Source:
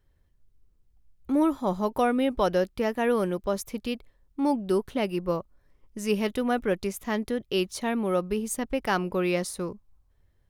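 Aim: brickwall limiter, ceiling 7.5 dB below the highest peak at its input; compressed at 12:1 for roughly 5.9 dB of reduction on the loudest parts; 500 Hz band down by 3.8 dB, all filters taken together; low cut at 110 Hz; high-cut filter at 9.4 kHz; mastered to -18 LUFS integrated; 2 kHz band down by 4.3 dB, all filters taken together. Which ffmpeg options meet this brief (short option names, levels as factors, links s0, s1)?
-af "highpass=110,lowpass=9400,equalizer=f=500:t=o:g=-4.5,equalizer=f=2000:t=o:g=-5.5,acompressor=threshold=0.0447:ratio=12,volume=8.91,alimiter=limit=0.398:level=0:latency=1"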